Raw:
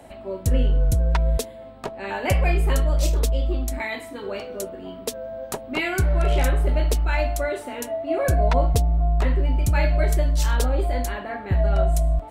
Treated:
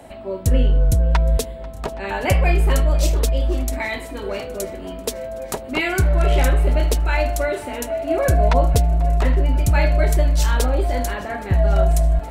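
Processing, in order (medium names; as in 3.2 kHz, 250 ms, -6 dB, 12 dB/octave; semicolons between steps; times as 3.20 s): shuffle delay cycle 818 ms, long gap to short 1.5:1, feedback 72%, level -21.5 dB; trim +3.5 dB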